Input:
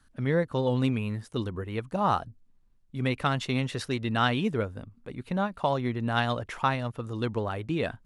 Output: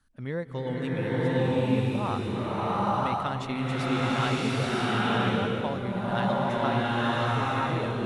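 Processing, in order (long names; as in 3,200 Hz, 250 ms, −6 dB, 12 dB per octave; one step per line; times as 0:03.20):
slow-attack reverb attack 970 ms, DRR −9 dB
level −7 dB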